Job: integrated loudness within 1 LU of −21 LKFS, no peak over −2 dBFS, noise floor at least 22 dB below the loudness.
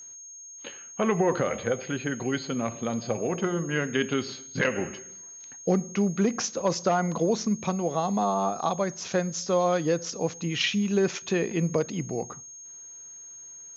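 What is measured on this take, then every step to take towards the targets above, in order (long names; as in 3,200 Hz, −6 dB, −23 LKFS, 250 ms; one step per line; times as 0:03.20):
interfering tone 6,500 Hz; level of the tone −42 dBFS; integrated loudness −27.5 LKFS; sample peak −12.5 dBFS; target loudness −21.0 LKFS
→ notch filter 6,500 Hz, Q 30
level +6.5 dB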